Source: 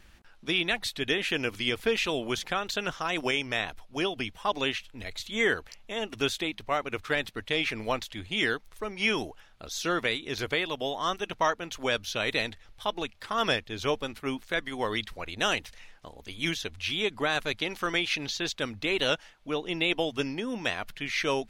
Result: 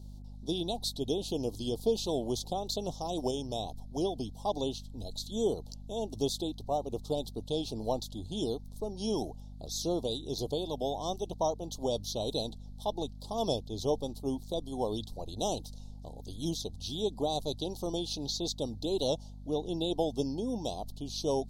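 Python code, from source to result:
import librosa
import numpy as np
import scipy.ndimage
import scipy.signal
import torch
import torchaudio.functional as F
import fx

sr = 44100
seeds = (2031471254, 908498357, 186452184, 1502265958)

y = fx.add_hum(x, sr, base_hz=50, snr_db=15)
y = scipy.signal.sosfilt(scipy.signal.ellip(3, 1.0, 60, [820.0, 4000.0], 'bandstop', fs=sr, output='sos'), y)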